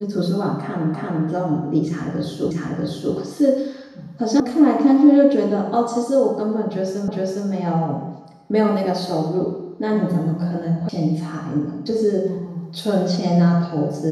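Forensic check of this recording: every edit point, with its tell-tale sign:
0.94 s: repeat of the last 0.34 s
2.51 s: repeat of the last 0.64 s
4.40 s: sound stops dead
7.08 s: repeat of the last 0.41 s
10.89 s: sound stops dead

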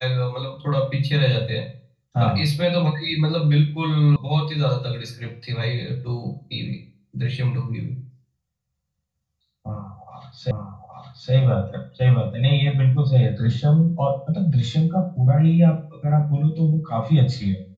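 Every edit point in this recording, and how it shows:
4.16 s: sound stops dead
10.51 s: repeat of the last 0.82 s

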